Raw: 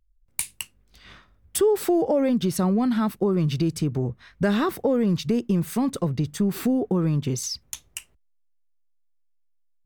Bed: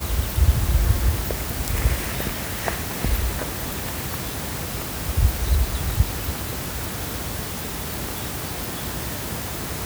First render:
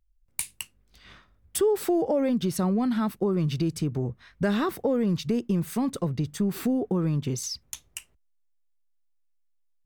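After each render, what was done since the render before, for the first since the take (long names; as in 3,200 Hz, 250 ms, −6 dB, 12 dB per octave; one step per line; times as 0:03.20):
level −3 dB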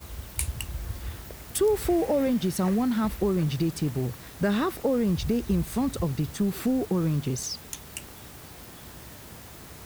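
mix in bed −15.5 dB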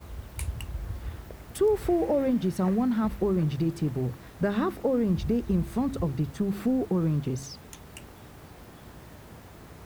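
high-shelf EQ 2,600 Hz −11.5 dB
hum removal 67.76 Hz, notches 5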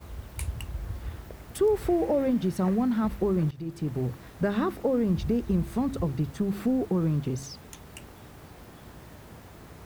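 0:03.51–0:03.99: fade in, from −18 dB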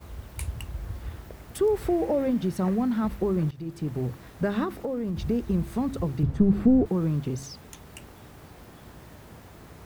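0:04.64–0:05.17: downward compressor, threshold −26 dBFS
0:06.23–0:06.86: spectral tilt −3.5 dB per octave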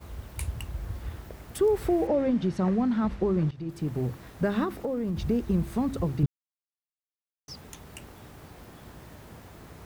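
0:02.07–0:03.69: low-pass filter 5,700 Hz
0:06.26–0:07.48: silence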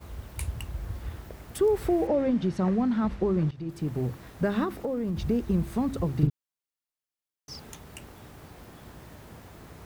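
0:06.12–0:07.77: double-tracking delay 40 ms −3.5 dB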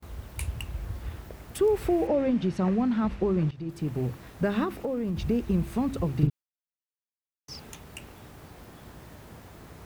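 dynamic equaliser 2,600 Hz, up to +5 dB, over −60 dBFS, Q 3.4
noise gate with hold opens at −40 dBFS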